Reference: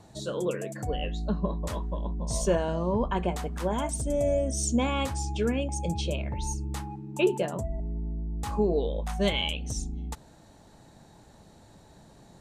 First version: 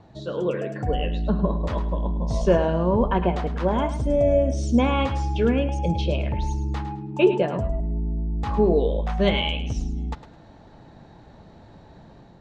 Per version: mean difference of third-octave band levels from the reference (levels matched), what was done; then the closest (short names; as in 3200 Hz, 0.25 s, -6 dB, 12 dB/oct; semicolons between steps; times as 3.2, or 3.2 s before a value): 4.0 dB: air absorption 230 m; de-hum 204.8 Hz, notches 27; on a send: thinning echo 0.106 s, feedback 25%, level -11 dB; on the sum: AGC gain up to 4 dB; gain +3 dB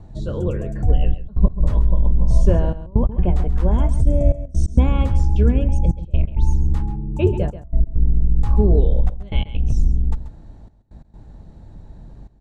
7.5 dB: octaver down 2 oct, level -3 dB; RIAA curve playback; step gate "xxxxxxxxxx..x." 132 bpm -24 dB; echo 0.135 s -13.5 dB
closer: first